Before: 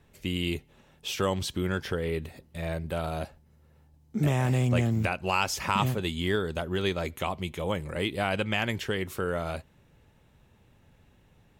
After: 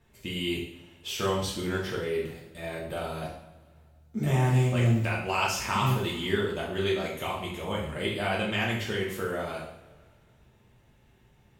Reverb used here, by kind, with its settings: two-slope reverb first 0.61 s, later 2 s, from -18 dB, DRR -4.5 dB; trim -5.5 dB

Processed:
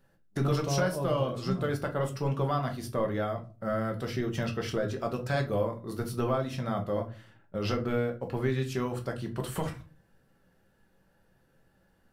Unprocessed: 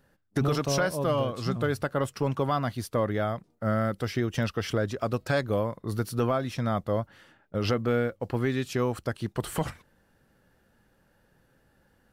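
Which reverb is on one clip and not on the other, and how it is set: simulated room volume 180 m³, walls furnished, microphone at 1.1 m; trim -5 dB

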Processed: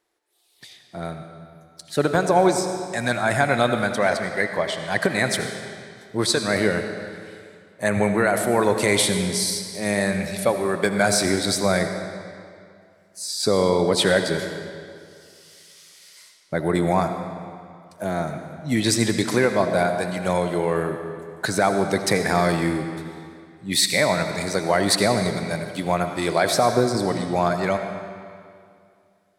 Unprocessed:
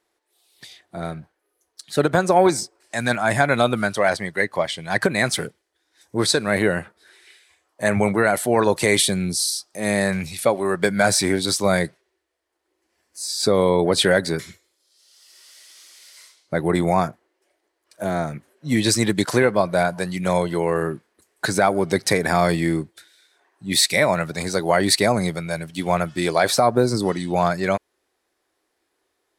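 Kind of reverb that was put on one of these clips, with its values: algorithmic reverb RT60 2.3 s, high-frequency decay 0.85×, pre-delay 40 ms, DRR 6.5 dB; trim -2 dB

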